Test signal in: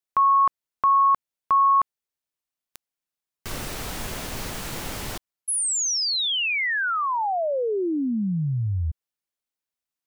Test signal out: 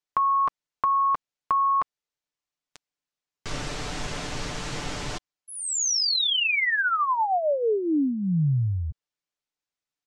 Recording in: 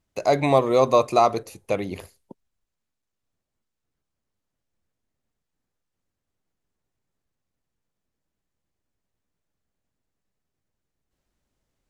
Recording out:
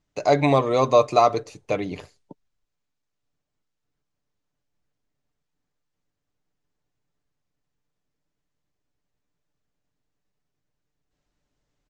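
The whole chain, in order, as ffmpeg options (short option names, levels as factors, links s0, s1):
-af "lowpass=f=7400:w=0.5412,lowpass=f=7400:w=1.3066,aecho=1:1:6.8:0.42"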